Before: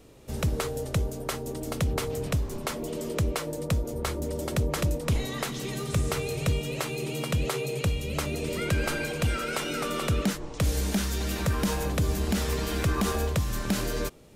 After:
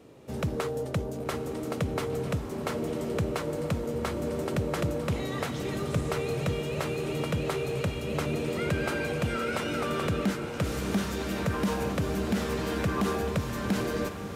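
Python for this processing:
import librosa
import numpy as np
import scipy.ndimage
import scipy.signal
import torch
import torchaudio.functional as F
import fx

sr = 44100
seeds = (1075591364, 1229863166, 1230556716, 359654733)

p1 = scipy.signal.sosfilt(scipy.signal.butter(2, 120.0, 'highpass', fs=sr, output='sos'), x)
p2 = fx.high_shelf(p1, sr, hz=3200.0, db=-10.5)
p3 = 10.0 ** (-30.5 / 20.0) * np.tanh(p2 / 10.0 ** (-30.5 / 20.0))
p4 = p2 + (p3 * librosa.db_to_amplitude(-3.5))
p5 = fx.echo_diffused(p4, sr, ms=989, feedback_pct=68, wet_db=-9.5)
y = p5 * librosa.db_to_amplitude(-2.0)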